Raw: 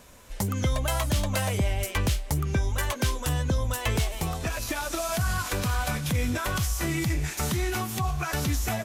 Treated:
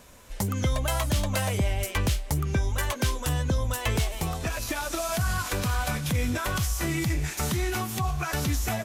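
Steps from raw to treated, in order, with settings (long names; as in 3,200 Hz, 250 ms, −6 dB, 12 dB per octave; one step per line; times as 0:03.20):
0:06.43–0:07.56: surface crackle 140 per second −44 dBFS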